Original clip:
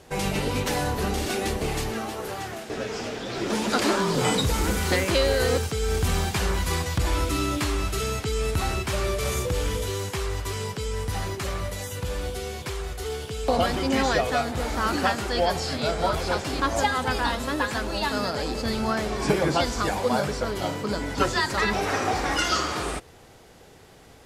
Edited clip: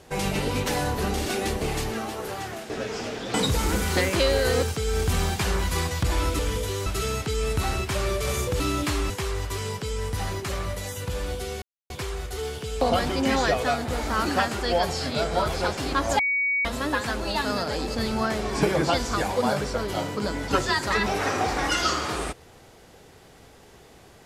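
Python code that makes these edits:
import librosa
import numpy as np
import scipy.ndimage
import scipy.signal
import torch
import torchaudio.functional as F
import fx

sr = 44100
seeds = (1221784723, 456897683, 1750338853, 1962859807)

y = fx.edit(x, sr, fx.cut(start_s=3.34, length_s=0.95),
    fx.swap(start_s=7.34, length_s=0.5, other_s=9.58, other_length_s=0.47),
    fx.insert_silence(at_s=12.57, length_s=0.28),
    fx.bleep(start_s=16.86, length_s=0.46, hz=2250.0, db=-21.0), tone=tone)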